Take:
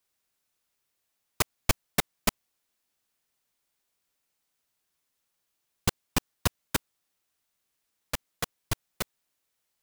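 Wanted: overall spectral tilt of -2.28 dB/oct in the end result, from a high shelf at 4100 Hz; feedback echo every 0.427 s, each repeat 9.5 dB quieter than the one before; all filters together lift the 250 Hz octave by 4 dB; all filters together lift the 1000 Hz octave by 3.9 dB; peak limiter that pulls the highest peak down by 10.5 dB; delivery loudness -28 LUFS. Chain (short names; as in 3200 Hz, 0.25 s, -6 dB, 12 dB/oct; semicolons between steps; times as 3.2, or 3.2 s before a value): bell 250 Hz +5 dB; bell 1000 Hz +4 dB; high shelf 4100 Hz +7.5 dB; limiter -12.5 dBFS; feedback echo 0.427 s, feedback 33%, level -9.5 dB; gain +5.5 dB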